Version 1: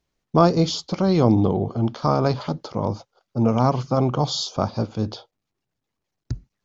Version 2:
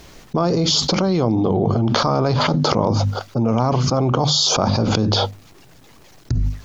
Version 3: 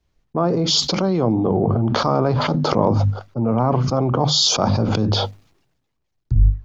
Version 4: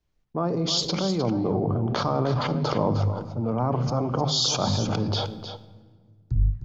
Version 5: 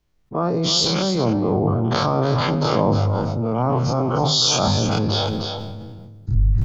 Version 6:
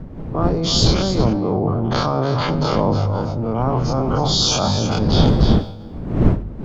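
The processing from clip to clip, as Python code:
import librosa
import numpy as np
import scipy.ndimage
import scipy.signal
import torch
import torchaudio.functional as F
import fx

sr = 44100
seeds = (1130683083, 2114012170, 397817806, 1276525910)

y1 = fx.hum_notches(x, sr, base_hz=50, count=5)
y1 = fx.env_flatten(y1, sr, amount_pct=100)
y1 = y1 * librosa.db_to_amplitude(-5.5)
y2 = fx.high_shelf(y1, sr, hz=3700.0, db=-10.0)
y2 = fx.band_widen(y2, sr, depth_pct=100)
y3 = y2 + 10.0 ** (-10.0 / 20.0) * np.pad(y2, (int(308 * sr / 1000.0), 0))[:len(y2)]
y3 = fx.room_shoebox(y3, sr, seeds[0], volume_m3=2100.0, walls='mixed', distance_m=0.4)
y3 = y3 * librosa.db_to_amplitude(-7.0)
y4 = fx.spec_dilate(y3, sr, span_ms=60)
y4 = fx.sustainer(y4, sr, db_per_s=22.0)
y4 = y4 * librosa.db_to_amplitude(1.5)
y5 = fx.fade_out_tail(y4, sr, length_s=0.98)
y5 = fx.dmg_wind(y5, sr, seeds[1], corner_hz=200.0, level_db=-21.0)
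y5 = fx.doppler_dist(y5, sr, depth_ms=0.11)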